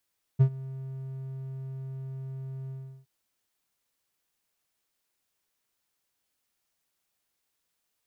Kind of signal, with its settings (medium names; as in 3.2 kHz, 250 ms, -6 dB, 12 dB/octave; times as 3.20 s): ADSR triangle 133 Hz, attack 21 ms, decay 78 ms, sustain -21 dB, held 2.31 s, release 357 ms -12 dBFS